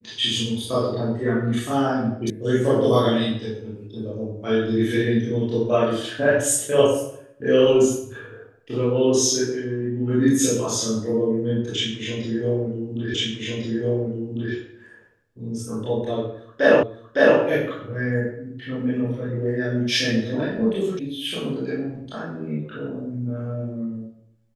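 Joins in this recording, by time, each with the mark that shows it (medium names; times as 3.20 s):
2.30 s: sound stops dead
13.14 s: repeat of the last 1.4 s
16.83 s: repeat of the last 0.56 s
20.99 s: sound stops dead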